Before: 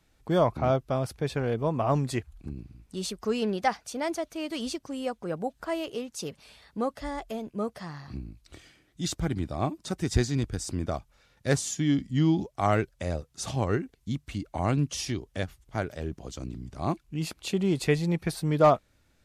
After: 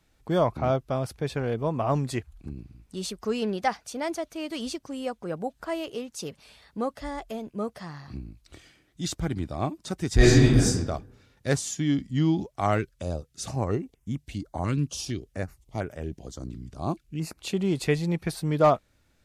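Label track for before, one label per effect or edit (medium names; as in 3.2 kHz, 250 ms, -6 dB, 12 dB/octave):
10.160000	10.660000	reverb throw, RT60 0.86 s, DRR -12 dB
12.780000	17.380000	step-sequenced notch 4.3 Hz 730–4200 Hz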